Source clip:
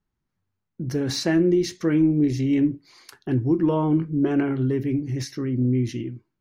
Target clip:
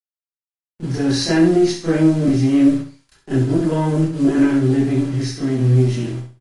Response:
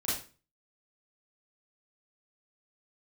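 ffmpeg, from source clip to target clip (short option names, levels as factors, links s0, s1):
-filter_complex "[0:a]aeval=exprs='if(lt(val(0),0),0.447*val(0),val(0))':c=same,agate=range=0.0224:threshold=0.00891:ratio=3:detection=peak,lowshelf=f=360:g=-3,bandreject=f=50:t=h:w=6,bandreject=f=100:t=h:w=6,bandreject=f=150:t=h:w=6,bandreject=f=200:t=h:w=6,bandreject=f=250:t=h:w=6,asettb=1/sr,asplit=3[s0][s1][s2];[s0]atrim=end=2.254[s3];[s1]atrim=start=2.25:end=4.35,asetpts=PTS-STARTPTS,afade=t=in:d=0.004:c=qsin,afade=t=out:st=2.096:d=0.004:c=qsin,acrossover=split=250|3000[s4][s5][s6];[s5]acompressor=threshold=0.0562:ratio=3[s7];[s4][s7][s6]amix=inputs=3:normalize=0[s8];[s2]atrim=start=4.346[s9];[s3][s8]acrossfade=d=0.004:c1=hsin:c2=qsin[s10];[s10][s9]acrossfade=d=0.004:c1=qsin:c2=hsin,acrusher=bits=8:dc=4:mix=0:aa=0.000001,aecho=1:1:65|130|195|260:0.422|0.122|0.0355|0.0103[s11];[1:a]atrim=start_sample=2205,afade=t=out:st=0.15:d=0.01,atrim=end_sample=7056,asetrate=57330,aresample=44100[s12];[s11][s12]afir=irnorm=-1:irlink=0,volume=1.5" -ar 24000 -c:a libmp3lame -b:a 48k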